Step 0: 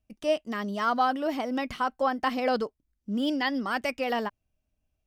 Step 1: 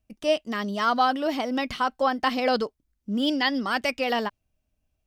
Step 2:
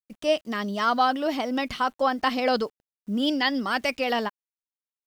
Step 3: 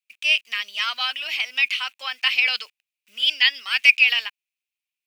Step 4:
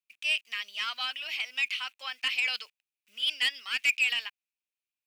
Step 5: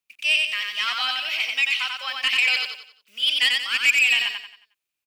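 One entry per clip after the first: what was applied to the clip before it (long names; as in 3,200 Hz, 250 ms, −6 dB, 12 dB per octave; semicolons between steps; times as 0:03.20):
dynamic equaliser 4,000 Hz, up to +6 dB, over −49 dBFS, Q 1.1; level +2.5 dB
bit reduction 10 bits
high-pass with resonance 2,500 Hz, resonance Q 7; level +3 dB
soft clipping −10.5 dBFS, distortion −13 dB; level −7.5 dB
repeating echo 90 ms, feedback 38%, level −3 dB; level +7 dB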